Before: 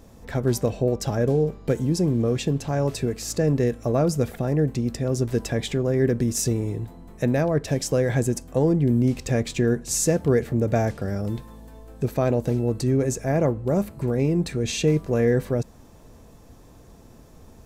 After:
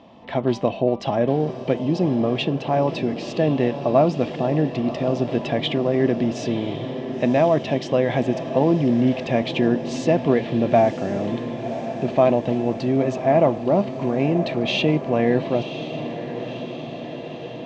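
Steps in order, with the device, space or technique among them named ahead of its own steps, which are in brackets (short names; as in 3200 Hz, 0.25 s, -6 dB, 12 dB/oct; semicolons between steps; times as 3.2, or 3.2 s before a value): kitchen radio (speaker cabinet 210–3800 Hz, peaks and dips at 450 Hz -8 dB, 670 Hz +6 dB, 970 Hz +5 dB, 1500 Hz -9 dB, 3000 Hz +8 dB); diffused feedback echo 1.04 s, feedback 67%, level -11 dB; gain +5 dB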